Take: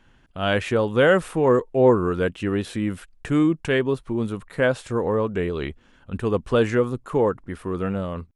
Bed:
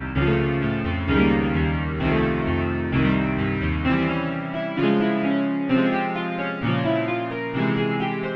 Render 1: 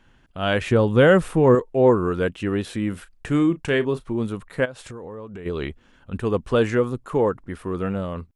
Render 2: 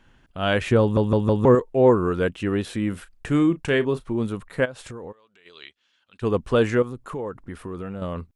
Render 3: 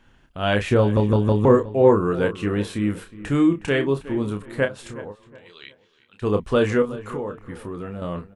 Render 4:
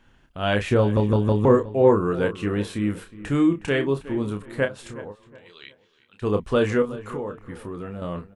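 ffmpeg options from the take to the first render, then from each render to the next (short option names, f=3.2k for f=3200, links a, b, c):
-filter_complex "[0:a]asettb=1/sr,asplit=3[a][b][c];[a]atrim=end=0.614[d];[b]atrim=start=0.61:end=1.55,asetpts=PTS-STARTPTS,afade=t=in:d=0.004:c=qsin,afade=t=out:st=0.936:d=0.004:c=qsin,lowshelf=f=260:g=9[e];[c]atrim=start=1.546[f];[d][e]acrossfade=d=0.004:c1=hsin:c2=qsin[g];[g][f]acrossfade=d=0.004:c1=qsin:c2=hsin,asettb=1/sr,asplit=3[h][i][j];[h]atrim=end=2.894[k];[i]atrim=start=2.89:end=4.09,asetpts=PTS-STARTPTS,afade=t=in:d=0.004:c=qsin,afade=t=out:st=1.196:d=0.004:c=qsin,asplit=2[l][m];[m]adelay=35,volume=-13.5dB[n];[l][n]amix=inputs=2:normalize=0,atrim=end_sample=52920[o];[j]atrim=start=4.086[p];[k][o]acrossfade=d=0.004:c1=hsin:c2=qsin[q];[q][p]acrossfade=d=0.004:c1=qsin:c2=hsin,asplit=3[r][s][t];[r]afade=t=out:st=4.64:d=0.02[u];[s]acompressor=threshold=-33dB:ratio=8:attack=3.2:release=140:knee=1:detection=peak,afade=t=in:st=4.64:d=0.02,afade=t=out:st=5.45:d=0.02[v];[t]afade=t=in:st=5.45:d=0.02[w];[u][v][w]amix=inputs=3:normalize=0"
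-filter_complex "[0:a]asplit=3[a][b][c];[a]afade=t=out:st=5.11:d=0.02[d];[b]bandpass=f=4.1k:t=q:w=1.6,afade=t=in:st=5.11:d=0.02,afade=t=out:st=6.21:d=0.02[e];[c]afade=t=in:st=6.21:d=0.02[f];[d][e][f]amix=inputs=3:normalize=0,asettb=1/sr,asplit=3[g][h][i];[g]atrim=end=6.824[j];[h]atrim=start=6.82:end=8.02,asetpts=PTS-STARTPTS,afade=t=in:d=0.004:c=qsin,afade=t=out:st=1.196:d=0.004:c=qsin,acompressor=threshold=-30dB:ratio=3:attack=3.2:release=140:knee=1:detection=peak[k];[i]atrim=start=8.016[l];[j][k]acrossfade=d=0.004:c1=hsin:c2=qsin[m];[m][l]acrossfade=d=0.004:c1=qsin:c2=hsin,asplit=5[n][o][p][q][r];[n]atrim=end=0.972[s];[o]atrim=start=0.808:end=0.972[t];[p]atrim=start=0.808:end=0.972[u];[q]atrim=start=0.808:end=0.972[v];[r]atrim=start=1.448[w];[s][t]acrossfade=d=0.004:c1=hsin:c2=hsin[x];[x][u]acrossfade=d=0.004:c1=hsin:c2=hsin[y];[y][v]acrossfade=d=0.004:c1=hsin:c2=hsin[z];[z][w]acrossfade=d=0.004:c1=hsin:c2=hsin"
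-filter_complex "[0:a]asplit=2[a][b];[b]adelay=29,volume=-7dB[c];[a][c]amix=inputs=2:normalize=0,asplit=2[d][e];[e]adelay=365,lowpass=f=2.8k:p=1,volume=-16dB,asplit=2[f][g];[g]adelay=365,lowpass=f=2.8k:p=1,volume=0.34,asplit=2[h][i];[i]adelay=365,lowpass=f=2.8k:p=1,volume=0.34[j];[d][f][h][j]amix=inputs=4:normalize=0"
-af "volume=-1.5dB"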